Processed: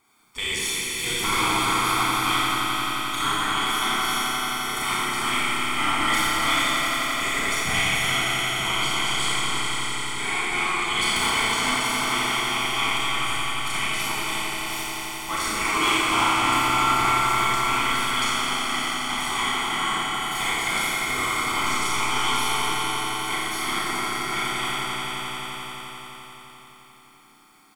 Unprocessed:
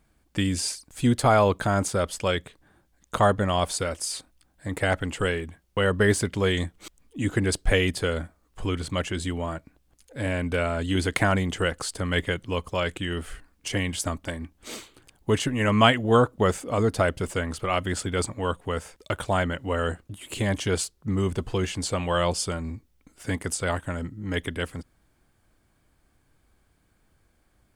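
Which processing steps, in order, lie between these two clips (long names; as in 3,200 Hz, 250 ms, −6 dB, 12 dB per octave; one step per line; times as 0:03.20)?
gate on every frequency bin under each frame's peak −15 dB weak
comb filter 0.9 ms, depth 81%
soft clipping −25.5 dBFS, distortion −13 dB
echo that builds up and dies away 87 ms, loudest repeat 5, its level −9 dB
four-comb reverb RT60 1.9 s, combs from 28 ms, DRR −6 dB
level +3.5 dB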